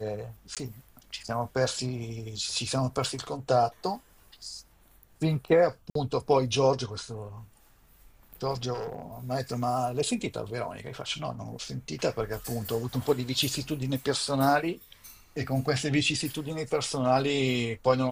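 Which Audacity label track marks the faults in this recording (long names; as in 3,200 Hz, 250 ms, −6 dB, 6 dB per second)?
0.550000	0.570000	drop-out 17 ms
5.900000	5.950000	drop-out 53 ms
8.730000	9.020000	clipping −29.5 dBFS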